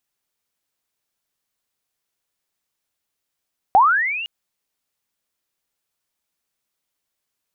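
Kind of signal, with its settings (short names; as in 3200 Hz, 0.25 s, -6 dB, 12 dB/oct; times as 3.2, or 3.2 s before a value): chirp linear 730 Hz -> 2900 Hz -7.5 dBFS -> -26 dBFS 0.51 s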